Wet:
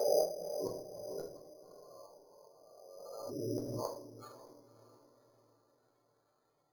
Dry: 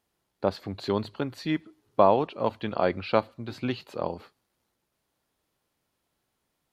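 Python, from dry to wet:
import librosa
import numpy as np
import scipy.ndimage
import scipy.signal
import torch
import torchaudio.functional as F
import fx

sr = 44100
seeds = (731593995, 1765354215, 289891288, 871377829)

p1 = fx.spec_swells(x, sr, rise_s=2.37)
p2 = fx.highpass(p1, sr, hz=100.0, slope=6)
p3 = fx.spec_gate(p2, sr, threshold_db=-10, keep='strong')
p4 = p3 + 0.49 * np.pad(p3, (int(6.8 * sr / 1000.0), 0))[:len(p3)]
p5 = fx.gate_flip(p4, sr, shuts_db=-20.0, range_db=-41)
p6 = fx.low_shelf_res(p5, sr, hz=360.0, db=-7.5, q=1.5)
p7 = fx.comb_fb(p6, sr, f0_hz=550.0, decay_s=0.57, harmonics='all', damping=0.0, mix_pct=60)
p8 = p7 + fx.echo_diffused(p7, sr, ms=560, feedback_pct=43, wet_db=-14.5, dry=0)
p9 = fx.room_shoebox(p8, sr, seeds[0], volume_m3=52.0, walls='mixed', distance_m=0.64)
p10 = np.repeat(scipy.signal.resample_poly(p9, 1, 8), 8)[:len(p9)]
p11 = fx.pre_swell(p10, sr, db_per_s=29.0)
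y = p11 * 10.0 ** (4.0 / 20.0)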